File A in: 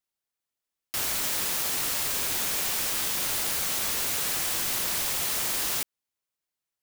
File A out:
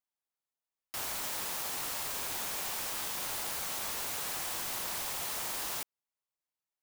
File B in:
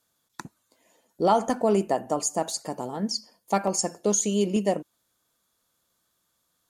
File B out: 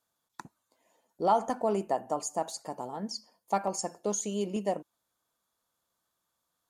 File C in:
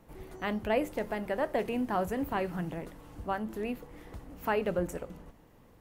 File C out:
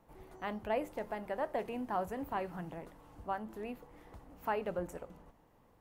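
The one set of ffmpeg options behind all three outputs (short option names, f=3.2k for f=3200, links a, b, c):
-af "equalizer=f=870:w=1.1:g=6.5,volume=-9dB"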